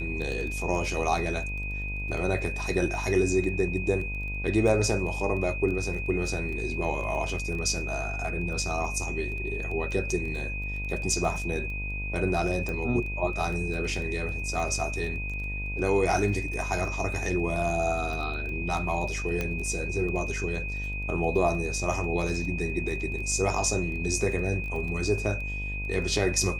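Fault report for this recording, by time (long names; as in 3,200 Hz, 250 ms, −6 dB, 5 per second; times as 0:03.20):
mains buzz 50 Hz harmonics 21 −34 dBFS
surface crackle 12 per second −34 dBFS
whistle 2,500 Hz −34 dBFS
0:12.69: click
0:19.41: click −15 dBFS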